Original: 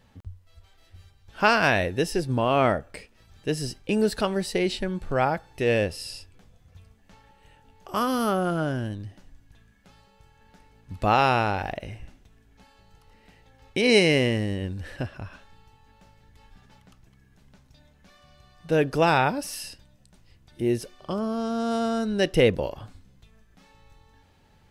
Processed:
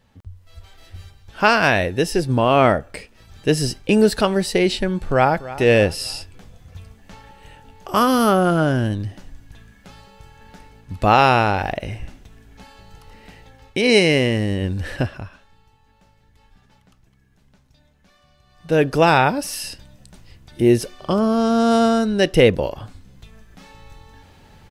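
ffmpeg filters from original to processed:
ffmpeg -i in.wav -filter_complex "[0:a]asplit=2[link_01][link_02];[link_02]afade=type=in:start_time=5.02:duration=0.01,afade=type=out:start_time=5.46:duration=0.01,aecho=0:1:290|580|870:0.149624|0.0598494|0.0239398[link_03];[link_01][link_03]amix=inputs=2:normalize=0,asplit=3[link_04][link_05][link_06];[link_04]atrim=end=15.33,asetpts=PTS-STARTPTS,afade=type=out:start_time=14.94:duration=0.39:silence=0.237137[link_07];[link_05]atrim=start=15.33:end=18.45,asetpts=PTS-STARTPTS,volume=-12.5dB[link_08];[link_06]atrim=start=18.45,asetpts=PTS-STARTPTS,afade=type=in:duration=0.39:silence=0.237137[link_09];[link_07][link_08][link_09]concat=n=3:v=0:a=1,dynaudnorm=framelen=280:gausssize=3:maxgain=12.5dB,volume=-1dB" out.wav

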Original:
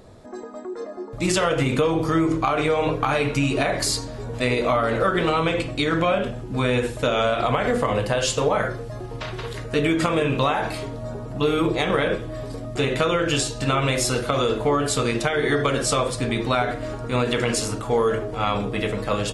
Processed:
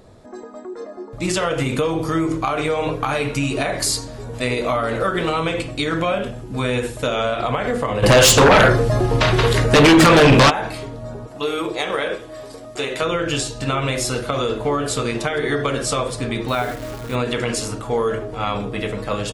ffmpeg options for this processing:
ffmpeg -i in.wav -filter_complex "[0:a]asettb=1/sr,asplit=3[link_01][link_02][link_03];[link_01]atrim=end=1.544[link_04];[link_02]atrim=start=1.54:end=7.16,asetpts=PTS-STARTPTS,afade=type=in:duration=0.004:curve=qsin,afade=type=out:start_time=5.616:duration=0.004:curve=qsin,highshelf=frequency=7600:gain=8[link_05];[link_03]atrim=start=7.156[link_06];[link_04][link_05]acrossfade=duration=0.004:curve1=hsin:curve2=qsin[link_07];[link_07][link_06]acrossfade=duration=0.004:curve1=qsin:curve2=hsin,asplit=3[link_08][link_09][link_10];[link_08]afade=type=out:start_time=8.02:duration=0.02[link_11];[link_09]aeval=exprs='0.447*sin(PI/2*3.98*val(0)/0.447)':channel_layout=same,afade=type=in:start_time=8.02:duration=0.02,afade=type=out:start_time=10.49:duration=0.02[link_12];[link_10]afade=type=in:start_time=10.49:duration=0.02[link_13];[link_11][link_12][link_13]amix=inputs=3:normalize=0,asettb=1/sr,asplit=3[link_14][link_15][link_16];[link_14]atrim=end=11.274[link_17];[link_15]atrim=start=11.27:end=13.02,asetpts=PTS-STARTPTS,afade=type=in:duration=0.004:curve=qsin,afade=type=out:start_time=1.746:duration=0.004:curve=qsin,bass=frequency=250:gain=-14,treble=frequency=4000:gain=4[link_18];[link_16]atrim=start=13.016[link_19];[link_17][link_18]acrossfade=duration=0.004:curve1=hsin:curve2=qsin[link_20];[link_20][link_19]acrossfade=duration=0.004:curve1=qsin:curve2=hsin,asplit=2[link_21][link_22];[link_22]afade=type=in:start_time=14.15:duration=0.01,afade=type=out:start_time=14.89:duration=0.01,aecho=0:1:490|980|1470|1960|2450|2940|3430|3920:0.141254|0.0988776|0.0692143|0.04845|0.033915|0.0237405|0.0166184|0.0116329[link_23];[link_21][link_23]amix=inputs=2:normalize=0,asettb=1/sr,asplit=3[link_24][link_25][link_26];[link_24]atrim=end=16.484[link_27];[link_25]atrim=start=16.48:end=17.15,asetpts=PTS-STARTPTS,afade=type=in:duration=0.004:curve=qsin,afade=type=out:start_time=0.666:duration=0.004:curve=qsin,acrusher=bits=7:dc=4:mix=0:aa=0.000001[link_28];[link_26]atrim=start=17.146[link_29];[link_27][link_28]acrossfade=duration=0.004:curve1=hsin:curve2=qsin[link_30];[link_30][link_29]acrossfade=duration=0.004:curve1=qsin:curve2=hsin" out.wav

